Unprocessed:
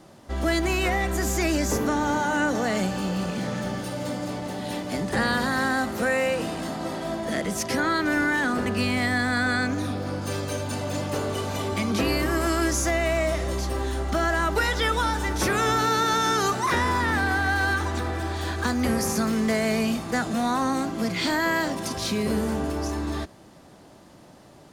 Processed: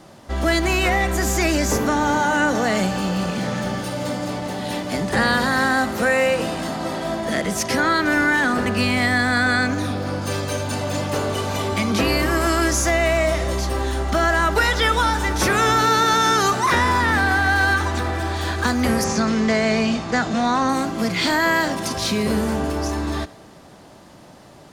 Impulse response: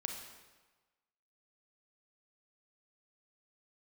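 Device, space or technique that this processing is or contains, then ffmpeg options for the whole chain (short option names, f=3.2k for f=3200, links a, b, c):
filtered reverb send: -filter_complex "[0:a]asettb=1/sr,asplit=3[a][b][c];[a]atrim=end=19.044[d];[b]atrim=start=19.04:end=20.69,asetpts=PTS-STARTPTS,afade=t=in:d=0.004:c=qsin,afade=t=out:st=1.646:d=0.004:c=qsin,lowpass=f=7k:w=0.5412,lowpass=f=7k:w=1.3066[e];[c]atrim=start=20.686[f];[d][e]acrossfade=d=0.004:c1=hsin:c2=qsin[g];[g][f]acrossfade=d=0.004:c1=qsin:c2=hsin,asplit=2[h][i];[i]highpass=f=300:w=0.5412,highpass=f=300:w=1.3066,lowpass=8k[j];[1:a]atrim=start_sample=2205[k];[j][k]afir=irnorm=-1:irlink=0,volume=-12.5dB[l];[h][l]amix=inputs=2:normalize=0,volume=4.5dB"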